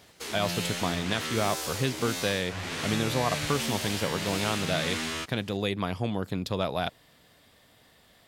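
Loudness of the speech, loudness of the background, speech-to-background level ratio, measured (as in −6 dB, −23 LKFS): −31.0 LKFS, −32.5 LKFS, 1.5 dB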